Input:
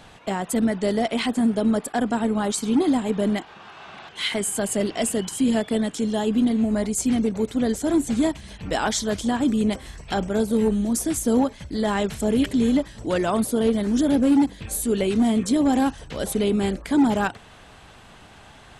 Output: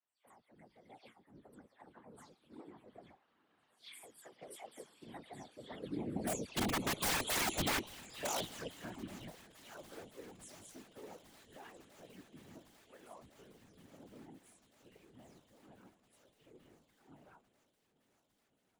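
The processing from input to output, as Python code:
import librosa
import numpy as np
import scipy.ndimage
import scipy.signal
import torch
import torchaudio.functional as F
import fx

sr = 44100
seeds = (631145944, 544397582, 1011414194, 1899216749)

y = fx.spec_delay(x, sr, highs='early', ms=209)
y = fx.doppler_pass(y, sr, speed_mps=24, closest_m=7.1, pass_at_s=7.24)
y = fx.highpass(y, sr, hz=1000.0, slope=6)
y = fx.high_shelf(y, sr, hz=3200.0, db=-10.0)
y = fx.env_flanger(y, sr, rest_ms=8.6, full_db=-40.5)
y = (np.mod(10.0 ** (35.0 / 20.0) * y + 1.0, 2.0) - 1.0) / 10.0 ** (35.0 / 20.0)
y = fx.whisperise(y, sr, seeds[0])
y = fx.echo_swing(y, sr, ms=1409, ratio=1.5, feedback_pct=74, wet_db=-20.0)
y = fx.band_widen(y, sr, depth_pct=40)
y = y * 10.0 ** (2.5 / 20.0)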